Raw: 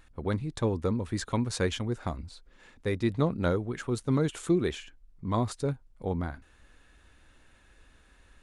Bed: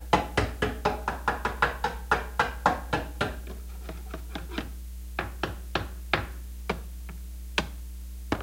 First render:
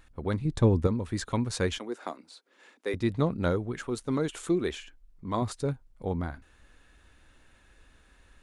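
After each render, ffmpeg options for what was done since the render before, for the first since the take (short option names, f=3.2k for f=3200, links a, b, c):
-filter_complex "[0:a]asettb=1/sr,asplit=3[a][b][c];[a]atrim=end=0.454[d];[b]atrim=start=0.45:end=0.87,asetpts=PTS-STARTPTS,afade=t=in:d=0.004:c=qsin,afade=t=out:st=0.416:d=0.004:c=qsin,lowshelf=f=370:g=9[e];[c]atrim=start=0.866[f];[d][e]acrossfade=d=0.004:c1=hsin:c2=qsin[g];[g][f]acrossfade=d=0.004:c1=qsin:c2=hsin,asettb=1/sr,asplit=3[h][i][j];[h]atrim=end=1.784[k];[i]atrim=start=1.78:end=2.94,asetpts=PTS-STARTPTS,afade=t=in:d=0.004:c=qsin,afade=t=out:st=1.156:d=0.004:c=qsin,highpass=f=280:w=0.5412,highpass=f=280:w=1.3066[l];[j]atrim=start=2.936[m];[k][l]acrossfade=d=0.004:c1=hsin:c2=qsin[n];[n][m]acrossfade=d=0.004:c1=qsin:c2=hsin,asettb=1/sr,asplit=3[o][p][q];[o]atrim=end=3.844[r];[p]atrim=start=3.84:end=5.42,asetpts=PTS-STARTPTS,afade=t=in:d=0.004:c=qsin,afade=t=out:st=1.576:d=0.004:c=qsin,equalizer=f=120:w=1.2:g=-8[s];[q]atrim=start=5.416[t];[r][s]acrossfade=d=0.004:c1=hsin:c2=qsin[u];[u][t]acrossfade=d=0.004:c1=qsin:c2=hsin"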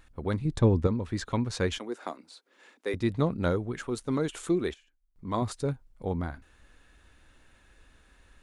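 -filter_complex "[0:a]asettb=1/sr,asplit=3[a][b][c];[a]atrim=end=0.594[d];[b]atrim=start=0.59:end=1.71,asetpts=PTS-STARTPTS,afade=t=in:d=0.004:c=qsin,afade=t=out:st=1.116:d=0.004:c=qsin,equalizer=f=9.6k:t=o:w=0.77:g=-7.5[e];[c]atrim=start=1.706[f];[d][e]acrossfade=d=0.004:c1=hsin:c2=qsin[g];[g][f]acrossfade=d=0.004:c1=qsin:c2=hsin,asplit=3[h][i][j];[h]atrim=end=4.74,asetpts=PTS-STARTPTS,afade=t=out:st=4.57:d=0.17:c=log:silence=0.125893[k];[i]atrim=start=4.74:end=5.16,asetpts=PTS-STARTPTS,volume=-18dB[l];[j]atrim=start=5.16,asetpts=PTS-STARTPTS,afade=t=in:d=0.17:c=log:silence=0.125893[m];[k][l][m]concat=n=3:v=0:a=1"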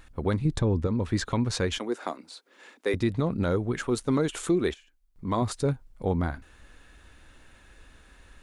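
-af "acontrast=39,alimiter=limit=-16dB:level=0:latency=1:release=156"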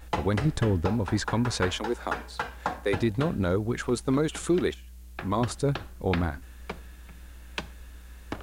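-filter_complex "[1:a]volume=-7dB[a];[0:a][a]amix=inputs=2:normalize=0"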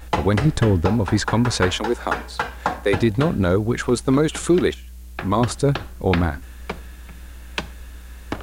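-af "volume=7.5dB"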